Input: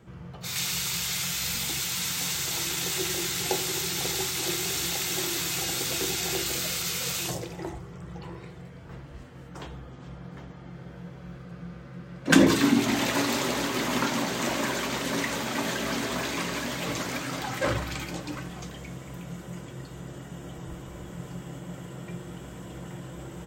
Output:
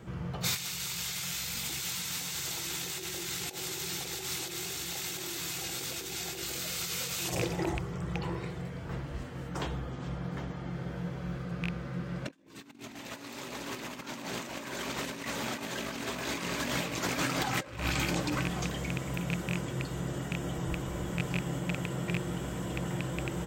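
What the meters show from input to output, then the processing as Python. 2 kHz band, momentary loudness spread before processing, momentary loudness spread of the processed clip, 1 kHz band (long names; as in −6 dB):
−5.5 dB, 17 LU, 8 LU, −5.5 dB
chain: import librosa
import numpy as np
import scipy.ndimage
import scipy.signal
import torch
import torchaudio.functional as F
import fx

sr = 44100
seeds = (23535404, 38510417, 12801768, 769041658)

y = fx.rattle_buzz(x, sr, strikes_db=-34.0, level_db=-25.0)
y = fx.over_compress(y, sr, threshold_db=-34.0, ratio=-0.5)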